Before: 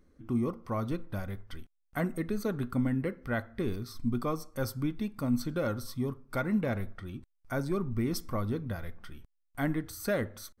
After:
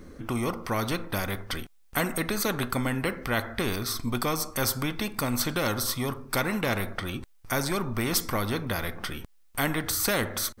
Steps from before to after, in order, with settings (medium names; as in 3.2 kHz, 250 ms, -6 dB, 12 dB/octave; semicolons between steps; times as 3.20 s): spectrum-flattening compressor 2:1; trim +7 dB